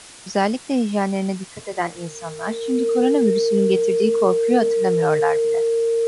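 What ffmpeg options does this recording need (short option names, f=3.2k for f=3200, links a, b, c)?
-af "bandreject=f=460:w=30,afftdn=nr=28:nf=-38"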